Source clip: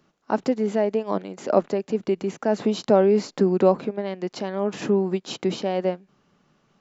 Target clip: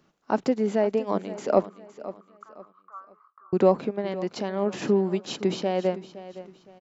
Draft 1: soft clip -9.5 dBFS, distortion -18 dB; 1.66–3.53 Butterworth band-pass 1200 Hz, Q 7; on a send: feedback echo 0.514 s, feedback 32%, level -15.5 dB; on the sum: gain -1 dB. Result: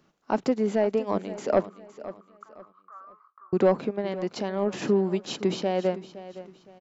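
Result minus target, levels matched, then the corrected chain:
soft clip: distortion +15 dB
soft clip 0 dBFS, distortion -34 dB; 1.66–3.53 Butterworth band-pass 1200 Hz, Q 7; on a send: feedback echo 0.514 s, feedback 32%, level -15.5 dB; on the sum: gain -1 dB

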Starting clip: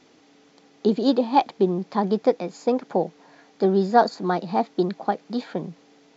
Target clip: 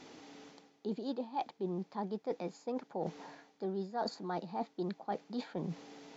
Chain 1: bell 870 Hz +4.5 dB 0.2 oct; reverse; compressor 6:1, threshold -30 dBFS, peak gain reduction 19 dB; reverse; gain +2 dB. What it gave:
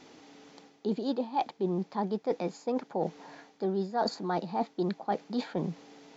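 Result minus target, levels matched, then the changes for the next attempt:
compressor: peak gain reduction -7 dB
change: compressor 6:1, threshold -38.5 dBFS, peak gain reduction 26 dB

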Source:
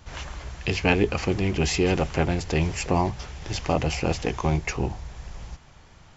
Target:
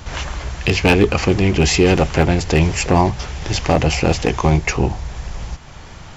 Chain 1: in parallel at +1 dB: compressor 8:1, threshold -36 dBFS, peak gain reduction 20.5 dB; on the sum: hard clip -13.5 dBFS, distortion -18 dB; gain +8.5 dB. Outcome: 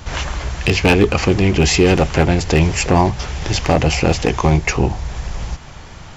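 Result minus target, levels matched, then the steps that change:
compressor: peak gain reduction -9 dB
change: compressor 8:1, threshold -46.5 dBFS, peak gain reduction 29.5 dB

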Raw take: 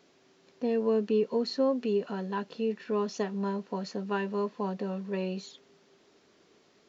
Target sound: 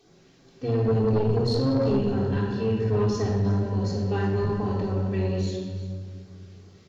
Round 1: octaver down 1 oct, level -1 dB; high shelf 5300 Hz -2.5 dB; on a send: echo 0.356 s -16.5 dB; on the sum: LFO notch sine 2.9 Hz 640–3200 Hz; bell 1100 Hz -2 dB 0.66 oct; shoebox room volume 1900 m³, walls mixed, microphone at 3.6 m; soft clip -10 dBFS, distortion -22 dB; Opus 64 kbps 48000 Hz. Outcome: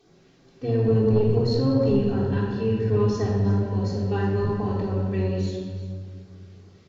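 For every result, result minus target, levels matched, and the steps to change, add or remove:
soft clip: distortion -9 dB; 8000 Hz band -4.5 dB
change: soft clip -17 dBFS, distortion -13 dB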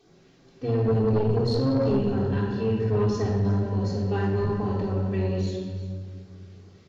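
8000 Hz band -3.5 dB
change: high shelf 5300 Hz +3.5 dB

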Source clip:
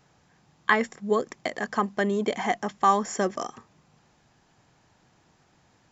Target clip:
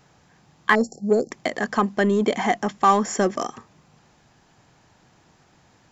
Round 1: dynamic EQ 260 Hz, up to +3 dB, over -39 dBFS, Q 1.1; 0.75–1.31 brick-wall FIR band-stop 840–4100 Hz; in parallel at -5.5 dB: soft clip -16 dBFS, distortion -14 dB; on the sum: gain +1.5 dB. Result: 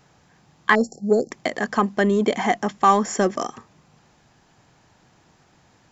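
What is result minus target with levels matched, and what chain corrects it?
soft clip: distortion -6 dB
dynamic EQ 260 Hz, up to +3 dB, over -39 dBFS, Q 1.1; 0.75–1.31 brick-wall FIR band-stop 840–4100 Hz; in parallel at -5.5 dB: soft clip -22.5 dBFS, distortion -8 dB; on the sum: gain +1.5 dB

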